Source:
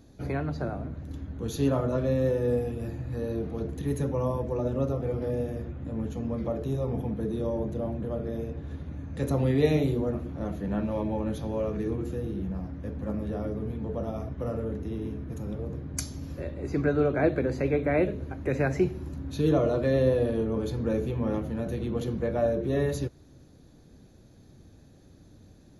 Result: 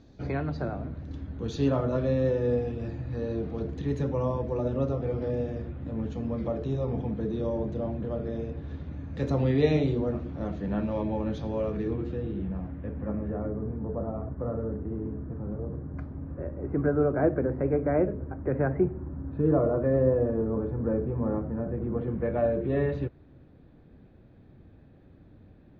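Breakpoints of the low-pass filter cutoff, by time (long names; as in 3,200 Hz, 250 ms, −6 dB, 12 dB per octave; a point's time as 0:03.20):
low-pass filter 24 dB per octave
0:11.54 5,400 Hz
0:12.74 3,000 Hz
0:13.66 1,500 Hz
0:21.86 1,500 Hz
0:22.40 2,800 Hz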